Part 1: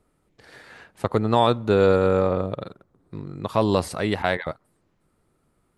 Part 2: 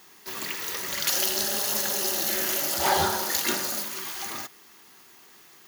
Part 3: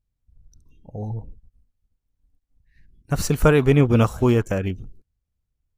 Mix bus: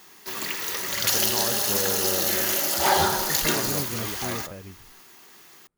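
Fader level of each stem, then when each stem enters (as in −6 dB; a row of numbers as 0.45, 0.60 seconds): −14.0, +2.5, −17.5 decibels; 0.00, 0.00, 0.00 seconds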